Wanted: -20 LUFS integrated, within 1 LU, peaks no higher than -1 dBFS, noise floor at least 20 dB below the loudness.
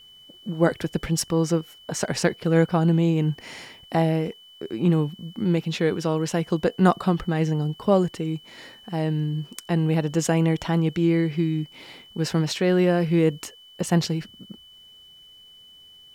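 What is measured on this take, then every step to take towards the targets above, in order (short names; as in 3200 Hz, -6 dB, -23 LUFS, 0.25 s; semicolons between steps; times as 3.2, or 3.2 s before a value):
steady tone 3000 Hz; tone level -47 dBFS; loudness -23.5 LUFS; peak -6.0 dBFS; loudness target -20.0 LUFS
-> notch 3000 Hz, Q 30; gain +3.5 dB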